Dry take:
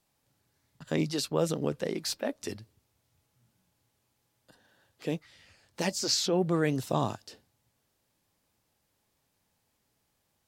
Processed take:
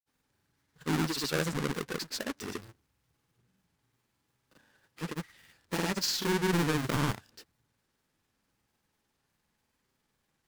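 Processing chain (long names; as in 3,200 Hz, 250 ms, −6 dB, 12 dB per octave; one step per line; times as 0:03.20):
each half-wave held at its own peak
granular cloud
graphic EQ with 15 bands 100 Hz −5 dB, 630 Hz −6 dB, 1,600 Hz +3 dB
level −4 dB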